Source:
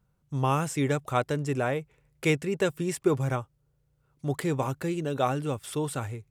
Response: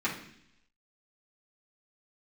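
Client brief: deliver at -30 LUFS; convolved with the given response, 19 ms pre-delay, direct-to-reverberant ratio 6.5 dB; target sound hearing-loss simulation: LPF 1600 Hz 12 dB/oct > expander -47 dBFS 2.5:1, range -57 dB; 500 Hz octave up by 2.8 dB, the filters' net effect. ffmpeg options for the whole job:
-filter_complex "[0:a]equalizer=f=500:t=o:g=3.5,asplit=2[a][b];[1:a]atrim=start_sample=2205,adelay=19[c];[b][c]afir=irnorm=-1:irlink=0,volume=-15dB[d];[a][d]amix=inputs=2:normalize=0,lowpass=1.6k,agate=range=-57dB:threshold=-47dB:ratio=2.5,volume=-2.5dB"

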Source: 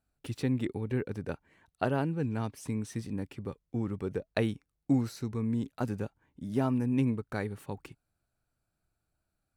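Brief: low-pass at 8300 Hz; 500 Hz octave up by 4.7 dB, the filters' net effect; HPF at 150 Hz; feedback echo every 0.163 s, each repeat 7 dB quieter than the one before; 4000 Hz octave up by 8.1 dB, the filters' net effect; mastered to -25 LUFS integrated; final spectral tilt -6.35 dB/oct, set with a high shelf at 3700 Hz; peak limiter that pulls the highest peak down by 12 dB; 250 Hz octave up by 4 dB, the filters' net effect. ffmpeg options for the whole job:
-af "highpass=150,lowpass=8.3k,equalizer=f=250:t=o:g=4,equalizer=f=500:t=o:g=4.5,highshelf=f=3.7k:g=8,equalizer=f=4k:t=o:g=5,alimiter=limit=-20.5dB:level=0:latency=1,aecho=1:1:163|326|489|652|815:0.447|0.201|0.0905|0.0407|0.0183,volume=6.5dB"

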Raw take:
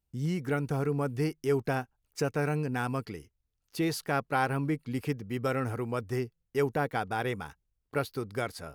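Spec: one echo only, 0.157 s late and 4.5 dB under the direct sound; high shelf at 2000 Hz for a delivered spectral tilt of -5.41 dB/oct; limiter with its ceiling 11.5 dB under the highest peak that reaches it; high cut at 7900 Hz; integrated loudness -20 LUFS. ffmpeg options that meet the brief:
-af "lowpass=7.9k,highshelf=f=2k:g=8,alimiter=limit=-23dB:level=0:latency=1,aecho=1:1:157:0.596,volume=13dB"

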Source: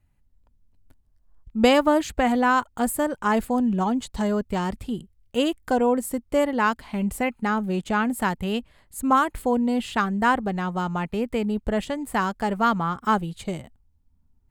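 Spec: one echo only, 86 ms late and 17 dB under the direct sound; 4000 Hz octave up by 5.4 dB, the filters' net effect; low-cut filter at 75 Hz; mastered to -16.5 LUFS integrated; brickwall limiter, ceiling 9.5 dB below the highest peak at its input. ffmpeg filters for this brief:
-af "highpass=75,equalizer=f=4k:t=o:g=8,alimiter=limit=-13dB:level=0:latency=1,aecho=1:1:86:0.141,volume=8.5dB"

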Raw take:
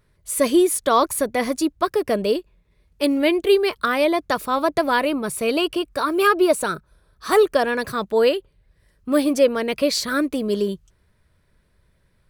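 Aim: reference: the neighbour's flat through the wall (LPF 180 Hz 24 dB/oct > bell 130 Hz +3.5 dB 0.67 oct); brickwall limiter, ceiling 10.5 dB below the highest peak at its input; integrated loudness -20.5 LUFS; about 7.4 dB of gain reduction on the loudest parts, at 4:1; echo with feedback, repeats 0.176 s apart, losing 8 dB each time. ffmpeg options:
-af "acompressor=threshold=-20dB:ratio=4,alimiter=limit=-20dB:level=0:latency=1,lowpass=f=180:w=0.5412,lowpass=f=180:w=1.3066,equalizer=f=130:t=o:w=0.67:g=3.5,aecho=1:1:176|352|528|704|880:0.398|0.159|0.0637|0.0255|0.0102,volume=24.5dB"

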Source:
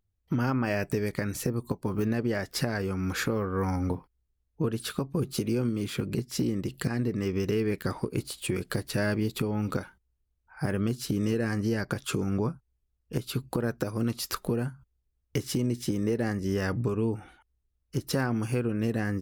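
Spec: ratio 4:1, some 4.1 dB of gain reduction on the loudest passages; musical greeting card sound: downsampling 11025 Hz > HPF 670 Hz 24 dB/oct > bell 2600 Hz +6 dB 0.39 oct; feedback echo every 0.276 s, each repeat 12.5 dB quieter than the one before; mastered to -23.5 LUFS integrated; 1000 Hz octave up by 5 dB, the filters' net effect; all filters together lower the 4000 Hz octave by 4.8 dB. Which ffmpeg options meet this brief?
-af "equalizer=f=1k:t=o:g=7.5,equalizer=f=4k:t=o:g=-9,acompressor=threshold=-28dB:ratio=4,aecho=1:1:276|552|828:0.237|0.0569|0.0137,aresample=11025,aresample=44100,highpass=f=670:w=0.5412,highpass=f=670:w=1.3066,equalizer=f=2.6k:t=o:w=0.39:g=6,volume=17dB"

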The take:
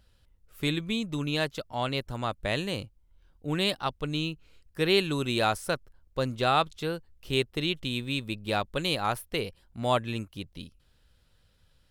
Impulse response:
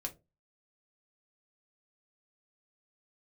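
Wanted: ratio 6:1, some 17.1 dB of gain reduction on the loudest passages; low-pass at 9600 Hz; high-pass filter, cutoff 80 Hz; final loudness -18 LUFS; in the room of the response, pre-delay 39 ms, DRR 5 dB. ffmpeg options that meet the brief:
-filter_complex "[0:a]highpass=80,lowpass=9.6k,acompressor=threshold=-39dB:ratio=6,asplit=2[a][b];[1:a]atrim=start_sample=2205,adelay=39[c];[b][c]afir=irnorm=-1:irlink=0,volume=-4dB[d];[a][d]amix=inputs=2:normalize=0,volume=24dB"

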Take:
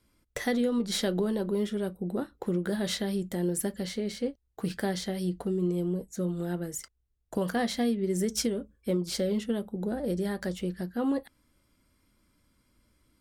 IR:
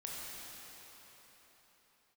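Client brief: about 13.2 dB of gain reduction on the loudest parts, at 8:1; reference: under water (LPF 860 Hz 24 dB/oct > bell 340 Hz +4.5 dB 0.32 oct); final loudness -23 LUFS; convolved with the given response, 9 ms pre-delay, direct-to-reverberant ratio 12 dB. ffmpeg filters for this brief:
-filter_complex "[0:a]acompressor=threshold=-38dB:ratio=8,asplit=2[a][b];[1:a]atrim=start_sample=2205,adelay=9[c];[b][c]afir=irnorm=-1:irlink=0,volume=-12.5dB[d];[a][d]amix=inputs=2:normalize=0,lowpass=f=860:w=0.5412,lowpass=f=860:w=1.3066,equalizer=f=340:t=o:w=0.32:g=4.5,volume=18.5dB"

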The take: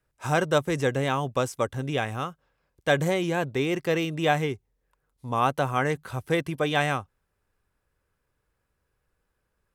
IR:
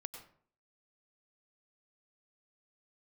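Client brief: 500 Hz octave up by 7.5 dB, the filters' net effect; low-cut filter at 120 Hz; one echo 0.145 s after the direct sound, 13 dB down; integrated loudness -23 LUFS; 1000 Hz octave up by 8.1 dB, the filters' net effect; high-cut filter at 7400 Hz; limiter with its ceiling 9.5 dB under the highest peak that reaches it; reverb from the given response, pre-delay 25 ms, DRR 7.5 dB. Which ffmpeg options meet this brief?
-filter_complex "[0:a]highpass=120,lowpass=7.4k,equalizer=f=500:t=o:g=6.5,equalizer=f=1k:t=o:g=8.5,alimiter=limit=-11dB:level=0:latency=1,aecho=1:1:145:0.224,asplit=2[a][b];[1:a]atrim=start_sample=2205,adelay=25[c];[b][c]afir=irnorm=-1:irlink=0,volume=-4.5dB[d];[a][d]amix=inputs=2:normalize=0"

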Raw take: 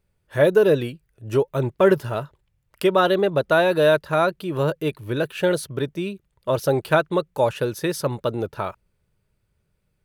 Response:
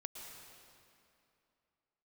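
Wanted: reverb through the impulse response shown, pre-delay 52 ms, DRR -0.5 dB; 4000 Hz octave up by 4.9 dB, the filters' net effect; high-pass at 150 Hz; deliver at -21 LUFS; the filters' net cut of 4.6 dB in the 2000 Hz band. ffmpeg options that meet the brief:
-filter_complex "[0:a]highpass=150,equalizer=f=2k:t=o:g=-9,equalizer=f=4k:t=o:g=8.5,asplit=2[a][b];[1:a]atrim=start_sample=2205,adelay=52[c];[b][c]afir=irnorm=-1:irlink=0,volume=3.5dB[d];[a][d]amix=inputs=2:normalize=0,volume=-1.5dB"

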